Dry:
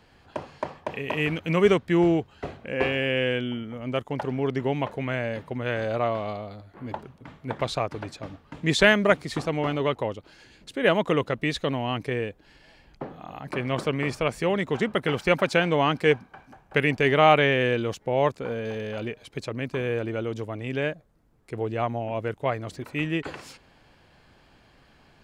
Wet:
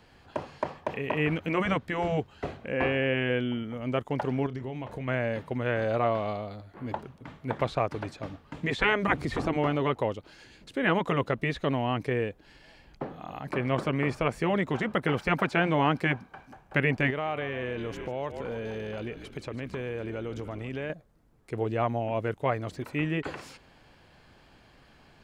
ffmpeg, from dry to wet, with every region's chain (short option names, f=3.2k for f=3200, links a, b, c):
-filter_complex "[0:a]asettb=1/sr,asplit=3[a][b][c];[a]atrim=end=4.464[d];[b]atrim=start=4.46:end=5.08,asetpts=PTS-STARTPTS,afade=t=in:d=0.004:c=qsin,afade=t=out:st=0.616:d=0.004:c=qsin,lowshelf=f=140:g=9,acompressor=threshold=-33dB:ratio=6:attack=3.2:release=140:knee=1:detection=peak,asplit=2[e][f];[f]adelay=31,volume=-11.5dB[g];[e][g]amix=inputs=2:normalize=0,atrim=end_sample=27342[h];[c]atrim=start=5.076[i];[d][h]acrossfade=d=0.004:c1=hsin:c2=qsin[j];[j][i]acrossfade=d=0.004:c1=qsin:c2=hsin,asettb=1/sr,asplit=3[k][l][m];[k]atrim=end=9.084[n];[l]atrim=start=9.08:end=9.57,asetpts=PTS-STARTPTS,afade=t=in:d=0.004:c=qsin,afade=t=out:st=0.486:d=0.004:c=qsin,lowshelf=f=320:g=9,acompressor=mode=upward:threshold=-21dB:ratio=2.5:attack=3.2:release=140:knee=2.83:detection=peak[o];[m]atrim=start=9.566[p];[n][o]acrossfade=d=0.004:c1=hsin:c2=qsin[q];[q][p]acrossfade=d=0.004:c1=qsin:c2=hsin,asettb=1/sr,asplit=3[r][s][t];[r]atrim=end=17.104[u];[s]atrim=start=17.1:end=20.9,asetpts=PTS-STARTPTS,afade=t=in:d=0.004:c=qsin,afade=t=out:st=3.796:d=0.004:c=qsin,asplit=7[v][w][x][y][z][aa][ab];[w]adelay=146,afreqshift=-48,volume=-15dB[ac];[x]adelay=292,afreqshift=-96,volume=-19.6dB[ad];[y]adelay=438,afreqshift=-144,volume=-24.2dB[ae];[z]adelay=584,afreqshift=-192,volume=-28.7dB[af];[aa]adelay=730,afreqshift=-240,volume=-33.3dB[ag];[ab]adelay=876,afreqshift=-288,volume=-37.9dB[ah];[v][ac][ad][ae][af][ag][ah]amix=inputs=7:normalize=0,atrim=end_sample=167580,acompressor=threshold=-32dB:ratio=3:attack=3.2:release=140:knee=1:detection=peak[ai];[t]atrim=start=20.896[aj];[u][ai]acrossfade=d=0.004:c1=hsin:c2=qsin[ak];[ak][aj]acrossfade=d=0.004:c1=qsin:c2=hsin,afftfilt=real='re*lt(hypot(re,im),0.562)':imag='im*lt(hypot(re,im),0.562)':win_size=1024:overlap=0.75,acrossover=split=2600[al][am];[am]acompressor=threshold=-47dB:ratio=4:attack=1:release=60[an];[al][an]amix=inputs=2:normalize=0"